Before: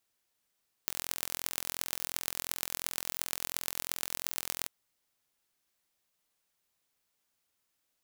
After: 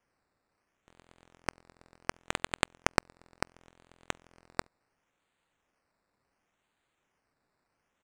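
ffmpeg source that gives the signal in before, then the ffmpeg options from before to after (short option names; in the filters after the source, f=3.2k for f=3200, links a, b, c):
-f lavfi -i "aevalsrc='0.668*eq(mod(n,1030),0)*(0.5+0.5*eq(mod(n,5150),0))':d=3.79:s=44100"
-af "lowshelf=f=440:g=-3,acrusher=samples=11:mix=1:aa=0.000001:lfo=1:lforange=6.6:lforate=0.7,aresample=22050,aresample=44100"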